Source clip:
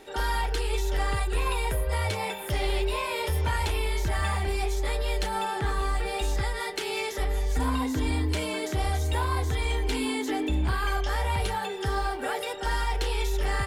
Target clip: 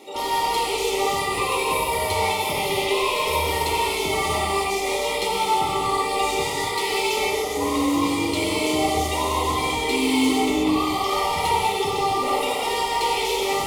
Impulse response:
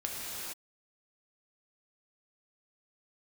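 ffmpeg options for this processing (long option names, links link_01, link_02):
-filter_complex "[0:a]highpass=210,asoftclip=type=hard:threshold=-28.5dB,asplit=3[link_01][link_02][link_03];[link_01]afade=type=out:start_time=7.25:duration=0.02[link_04];[link_02]afreqshift=25,afade=type=in:start_time=7.25:duration=0.02,afade=type=out:start_time=8.32:duration=0.02[link_05];[link_03]afade=type=in:start_time=8.32:duration=0.02[link_06];[link_04][link_05][link_06]amix=inputs=3:normalize=0,asuperstop=centerf=1600:order=8:qfactor=2.6[link_07];[1:a]atrim=start_sample=2205,asetrate=57330,aresample=44100[link_08];[link_07][link_08]afir=irnorm=-1:irlink=0,volume=8.5dB"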